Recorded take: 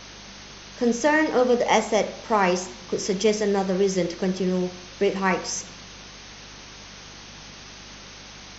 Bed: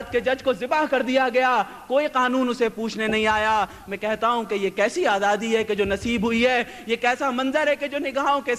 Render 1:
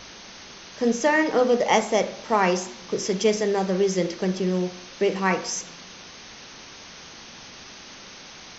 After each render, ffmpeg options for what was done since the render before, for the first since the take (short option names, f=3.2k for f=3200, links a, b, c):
-af "bandreject=f=50:t=h:w=4,bandreject=f=100:t=h:w=4,bandreject=f=150:t=h:w=4,bandreject=f=200:t=h:w=4,bandreject=f=250:t=h:w=4,bandreject=f=300:t=h:w=4"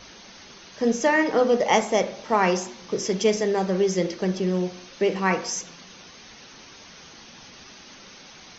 -af "afftdn=nr=6:nf=-44"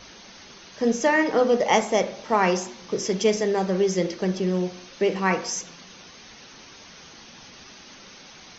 -af anull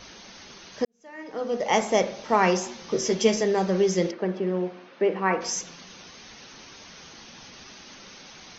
-filter_complex "[0:a]asettb=1/sr,asplit=3[a][b][c];[a]atrim=end=2.624[d];[b]atrim=start=2.62:end=3.42,asetpts=PTS-STARTPTS,afade=t=in:d=0.004:c=qsin,afade=t=out:st=0.796:d=0.004:c=qsin,asplit=2[e][f];[f]adelay=13,volume=-5dB[g];[e][g]amix=inputs=2:normalize=0,atrim=end_sample=35280[h];[c]atrim=start=3.416[i];[d][h]acrossfade=d=0.004:c1=hsin:c2=qsin[j];[j][i]acrossfade=d=0.004:c1=qsin:c2=hsin,asplit=3[k][l][m];[k]afade=t=out:st=4.1:d=0.02[n];[l]highpass=230,lowpass=2k,afade=t=in:st=4.1:d=0.02,afade=t=out:st=5.4:d=0.02[o];[m]afade=t=in:st=5.4:d=0.02[p];[n][o][p]amix=inputs=3:normalize=0,asplit=2[q][r];[q]atrim=end=0.85,asetpts=PTS-STARTPTS,afade=t=out:st=0.846:d=0.004:c=hsin[s];[r]atrim=start=0.85,asetpts=PTS-STARTPTS,afade=t=in:d=1.04:c=qua[t];[s][t]concat=n=2:v=0:a=1"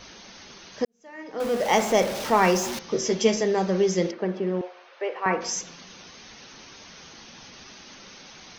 -filter_complex "[0:a]asettb=1/sr,asplit=3[a][b][c];[a]atrim=end=1.404[d];[b]atrim=start=1.4:end=2.79,asetpts=PTS-STARTPTS,afade=t=in:d=0.004:c=qsin,afade=t=out:st=1.386:d=0.004:c=qsin,aeval=exprs='val(0)+0.5*0.0376*sgn(val(0))':c=same[e];[c]atrim=start=2.786[f];[d][e]acrossfade=d=0.004:c1=hsin:c2=qsin[g];[g][f]acrossfade=d=0.004:c1=qsin:c2=hsin,asettb=1/sr,asplit=3[h][i][j];[h]atrim=end=4.614[k];[i]atrim=start=4.61:end=5.26,asetpts=PTS-STARTPTS,afade=t=in:d=0.004:c=qsin,afade=t=out:st=0.646:d=0.004:c=qsin,highpass=f=500:w=0.5412,highpass=f=500:w=1.3066[l];[j]atrim=start=5.256[m];[k][l]acrossfade=d=0.004:c1=hsin:c2=qsin[n];[n][m]acrossfade=d=0.004:c1=qsin:c2=hsin"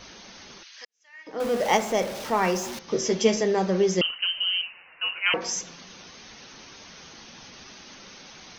-filter_complex "[0:a]asettb=1/sr,asplit=3[a][b][c];[a]atrim=end=0.634[d];[b]atrim=start=0.63:end=1.27,asetpts=PTS-STARTPTS,afade=t=in:d=0.004:c=qsin,afade=t=out:st=0.636:d=0.004:c=qsin,asuperpass=centerf=3400:order=4:qfactor=0.71[e];[c]atrim=start=1.266[f];[d][e]acrossfade=d=0.004:c1=hsin:c2=qsin[g];[g][f]acrossfade=d=0.004:c1=qsin:c2=hsin,asettb=1/sr,asplit=3[h][i][j];[h]atrim=end=4.014[k];[i]atrim=start=4.01:end=5.34,asetpts=PTS-STARTPTS,afade=t=in:d=0.004:c=qsin,afade=t=out:st=1.326:d=0.004:c=qsin,lowpass=f=2.8k:t=q:w=0.5098,lowpass=f=2.8k:t=q:w=0.6013,lowpass=f=2.8k:t=q:w=0.9,lowpass=f=2.8k:t=q:w=2.563,afreqshift=-3300[l];[j]atrim=start=5.336[m];[k][l]acrossfade=d=0.004:c1=hsin:c2=qsin[n];[n][m]acrossfade=d=0.004:c1=qsin:c2=hsin,asplit=3[o][p][q];[o]atrim=end=1.772[r];[p]atrim=start=1.768:end=2.882,asetpts=PTS-STARTPTS,volume=-4dB[s];[q]atrim=start=2.878[t];[r][s]acrossfade=d=0.004:c1=hsin:c2=hsin[u];[u][t]acrossfade=d=0.004:c1=hsin:c2=hsin"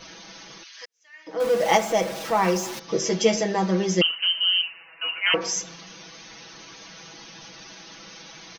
-af "lowshelf=f=75:g=-6,aecho=1:1:6.1:0.84"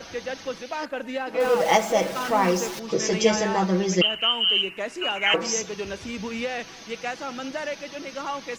-filter_complex "[1:a]volume=-10dB[a];[0:a][a]amix=inputs=2:normalize=0"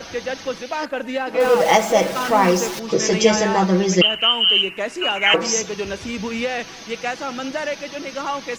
-af "volume=5.5dB,alimiter=limit=-3dB:level=0:latency=1"